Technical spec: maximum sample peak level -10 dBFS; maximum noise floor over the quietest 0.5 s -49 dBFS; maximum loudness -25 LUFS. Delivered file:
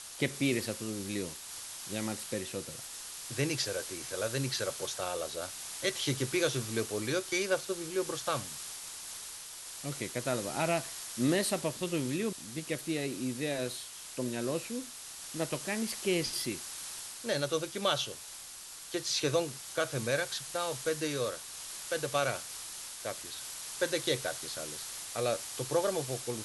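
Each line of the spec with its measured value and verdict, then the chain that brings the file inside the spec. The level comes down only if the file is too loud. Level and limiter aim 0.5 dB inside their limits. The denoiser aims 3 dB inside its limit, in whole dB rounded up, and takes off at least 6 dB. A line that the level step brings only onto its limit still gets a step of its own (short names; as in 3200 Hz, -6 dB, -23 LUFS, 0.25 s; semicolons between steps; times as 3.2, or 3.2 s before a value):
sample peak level -15.0 dBFS: OK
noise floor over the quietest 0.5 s -47 dBFS: fail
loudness -34.0 LUFS: OK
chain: denoiser 6 dB, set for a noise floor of -47 dBFS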